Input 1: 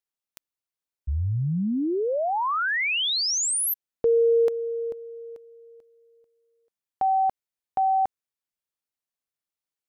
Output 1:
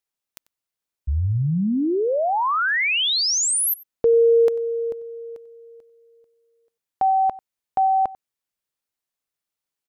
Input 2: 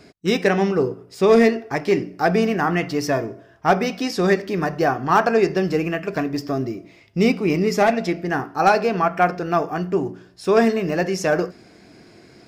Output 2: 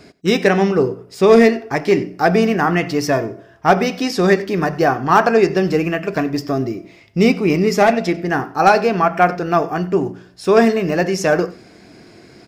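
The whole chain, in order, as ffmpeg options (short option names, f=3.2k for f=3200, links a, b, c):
-filter_complex "[0:a]asplit=2[a][b];[b]adelay=93.29,volume=-20dB,highshelf=f=4k:g=-2.1[c];[a][c]amix=inputs=2:normalize=0,volume=4dB"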